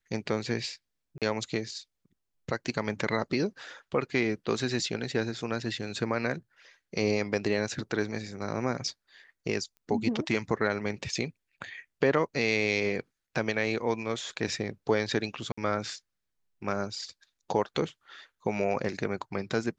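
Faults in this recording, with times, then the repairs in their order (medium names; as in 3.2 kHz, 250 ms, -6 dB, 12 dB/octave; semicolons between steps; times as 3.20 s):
1.18–1.22 s: dropout 37 ms
9.77 s: pop -37 dBFS
15.52–15.57 s: dropout 55 ms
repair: de-click; interpolate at 1.18 s, 37 ms; interpolate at 15.52 s, 55 ms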